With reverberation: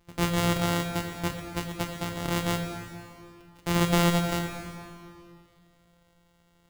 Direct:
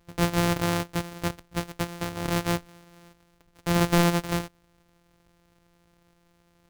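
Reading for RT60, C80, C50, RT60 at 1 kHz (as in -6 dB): 2.4 s, 6.0 dB, 5.0 dB, 2.3 s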